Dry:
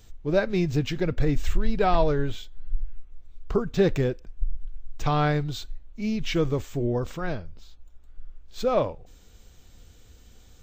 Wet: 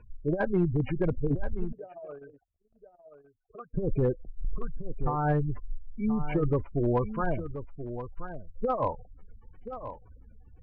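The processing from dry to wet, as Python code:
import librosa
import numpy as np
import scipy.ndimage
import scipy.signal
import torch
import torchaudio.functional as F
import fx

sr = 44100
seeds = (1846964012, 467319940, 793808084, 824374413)

y = fx.cvsd(x, sr, bps=16000)
y = fx.spec_gate(y, sr, threshold_db=-20, keep='strong')
y = fx.peak_eq(y, sr, hz=990.0, db=12.5, octaves=0.77)
y = fx.over_compress(y, sr, threshold_db=-22.0, ratio=-0.5)
y = np.clip(10.0 ** (16.5 / 20.0) * y, -1.0, 1.0) / 10.0 ** (16.5 / 20.0)
y = fx.air_absorb(y, sr, metres=240.0)
y = y + 10.0 ** (-11.0 / 20.0) * np.pad(y, (int(1029 * sr / 1000.0), 0))[:len(y)]
y = fx.vowel_sweep(y, sr, vowels='a-e', hz=1.9, at=(1.71, 3.73), fade=0.02)
y = F.gain(torch.from_numpy(y), -2.0).numpy()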